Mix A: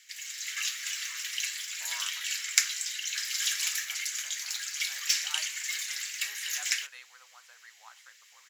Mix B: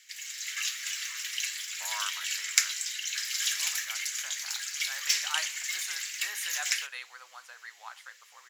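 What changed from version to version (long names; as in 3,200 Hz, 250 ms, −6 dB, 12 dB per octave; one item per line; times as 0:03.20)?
speech +8.0 dB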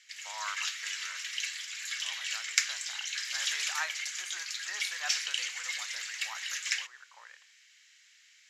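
speech: entry −1.55 s
master: add high-frequency loss of the air 63 metres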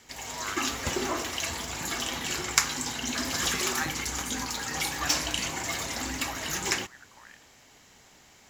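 background: remove Butterworth high-pass 1,700 Hz 36 dB per octave
master: remove high-frequency loss of the air 63 metres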